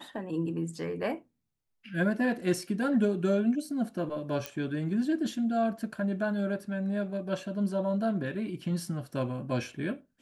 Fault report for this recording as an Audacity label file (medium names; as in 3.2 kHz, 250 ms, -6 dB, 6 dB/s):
4.460000	4.460000	pop -17 dBFS